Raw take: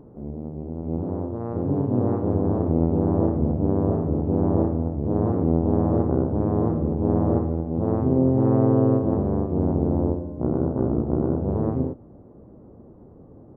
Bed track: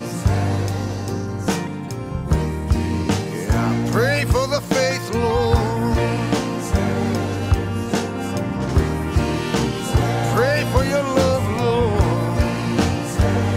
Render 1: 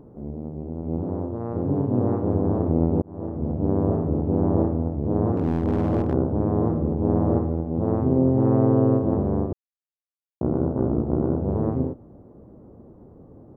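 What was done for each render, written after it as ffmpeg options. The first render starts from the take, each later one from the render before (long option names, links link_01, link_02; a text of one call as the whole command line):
ffmpeg -i in.wav -filter_complex "[0:a]asettb=1/sr,asplit=3[link_01][link_02][link_03];[link_01]atrim=end=5.364[link_04];[link_02]atrim=start=5.36:end=6.13,asetpts=PTS-STARTPTS,afade=type=in:duration=0.004:curve=qsin,afade=type=out:start_time=0.766:duration=0.004:curve=qsin,asoftclip=type=hard:threshold=-16dB[link_05];[link_03]atrim=start=6.126[link_06];[link_04][link_05]acrossfade=duration=0.004:curve1=hsin:curve2=qsin[link_07];[link_07][link_06]acrossfade=duration=0.004:curve1=qsin:curve2=hsin,asplit=4[link_08][link_09][link_10][link_11];[link_08]atrim=end=3.02,asetpts=PTS-STARTPTS,afade=type=out:start_time=3.016:duration=0.004:curve=hsin[link_12];[link_09]atrim=start=3.02:end=9.53,asetpts=PTS-STARTPTS,afade=type=in:duration=0.71,afade=type=out:start_time=6.506:duration=0.004:curve=hsin[link_13];[link_10]atrim=start=9.53:end=10.41,asetpts=PTS-STARTPTS,volume=0[link_14];[link_11]atrim=start=10.41,asetpts=PTS-STARTPTS,afade=type=in:duration=0.004:curve=hsin[link_15];[link_12][link_13][link_14][link_15]concat=n=4:v=0:a=1" out.wav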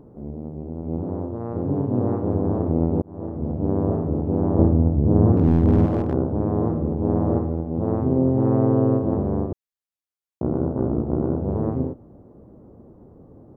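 ffmpeg -i in.wav -filter_complex "[0:a]asettb=1/sr,asplit=3[link_01][link_02][link_03];[link_01]atrim=end=4.594[link_04];[link_02]atrim=start=4.59:end=5.86,asetpts=PTS-STARTPTS,afade=type=in:duration=0.004:curve=qsin,afade=type=out:start_time=1.266:duration=0.004:curve=qsin,lowshelf=frequency=300:gain=9.5[link_05];[link_03]atrim=start=5.856[link_06];[link_04][link_05]acrossfade=duration=0.004:curve1=hsin:curve2=qsin[link_07];[link_07][link_06]acrossfade=duration=0.004:curve1=qsin:curve2=hsin" out.wav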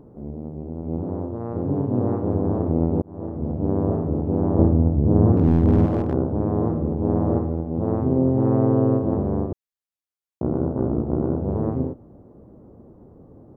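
ffmpeg -i in.wav -af anull out.wav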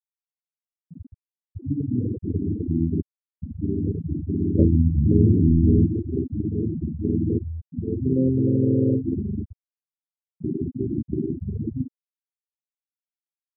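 ffmpeg -i in.wav -af "afftfilt=real='re*gte(hypot(re,im),0.447)':imag='im*gte(hypot(re,im),0.447)':win_size=1024:overlap=0.75" out.wav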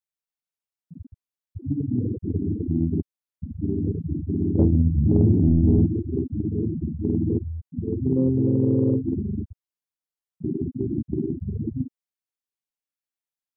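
ffmpeg -i in.wav -af "asoftclip=type=tanh:threshold=-5.5dB" out.wav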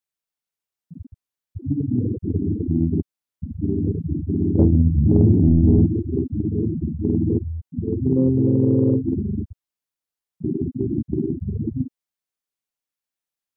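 ffmpeg -i in.wav -af "volume=3dB" out.wav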